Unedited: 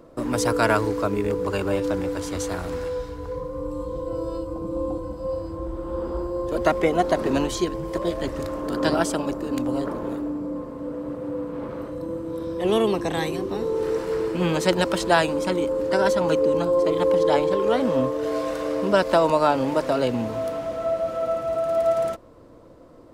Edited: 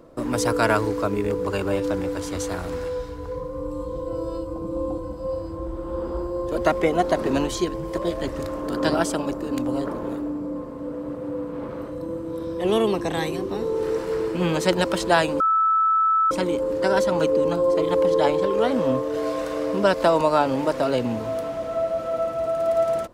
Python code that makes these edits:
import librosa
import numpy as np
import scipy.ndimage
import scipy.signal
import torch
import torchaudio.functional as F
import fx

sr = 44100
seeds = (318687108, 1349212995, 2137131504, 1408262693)

y = fx.edit(x, sr, fx.insert_tone(at_s=15.4, length_s=0.91, hz=1310.0, db=-16.0), tone=tone)